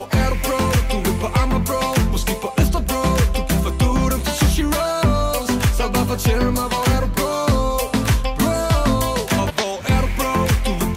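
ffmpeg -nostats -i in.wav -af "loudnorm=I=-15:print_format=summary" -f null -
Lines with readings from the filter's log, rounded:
Input Integrated:    -19.3 LUFS
Input True Peak:      -7.4 dBTP
Input LRA:             0.6 LU
Input Threshold:     -29.3 LUFS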